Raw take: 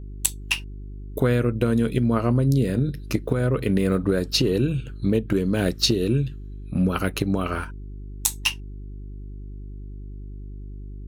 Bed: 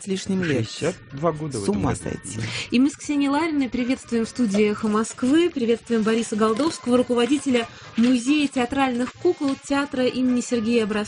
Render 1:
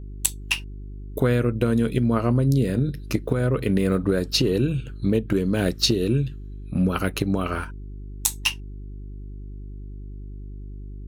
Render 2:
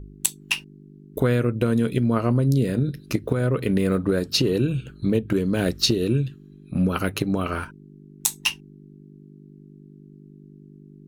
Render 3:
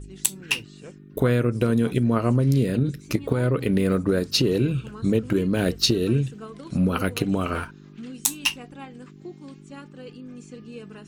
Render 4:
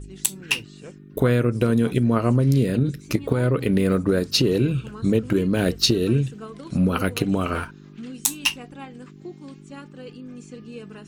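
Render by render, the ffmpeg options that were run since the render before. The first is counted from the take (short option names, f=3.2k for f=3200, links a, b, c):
-af anull
-af "bandreject=f=50:t=h:w=4,bandreject=f=100:t=h:w=4"
-filter_complex "[1:a]volume=-20dB[a];[0:a][a]amix=inputs=2:normalize=0"
-af "volume=1.5dB,alimiter=limit=-3dB:level=0:latency=1"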